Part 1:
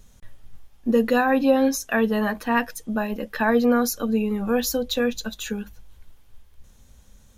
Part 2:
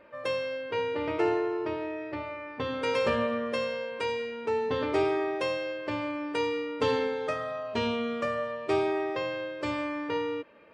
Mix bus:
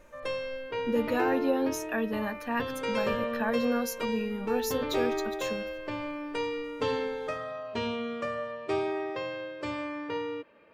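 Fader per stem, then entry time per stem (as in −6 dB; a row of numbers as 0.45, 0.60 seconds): −9.5, −3.0 decibels; 0.00, 0.00 seconds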